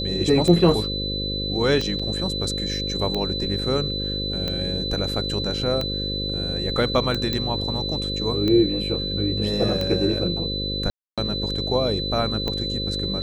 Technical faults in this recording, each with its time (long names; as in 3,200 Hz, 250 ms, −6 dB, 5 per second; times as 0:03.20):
mains buzz 50 Hz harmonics 11 −29 dBFS
scratch tick 45 rpm −13 dBFS
whistle 4,000 Hz −27 dBFS
0:01.99–0:02.00: drop-out 5.3 ms
0:07.33: click −11 dBFS
0:10.90–0:11.18: drop-out 276 ms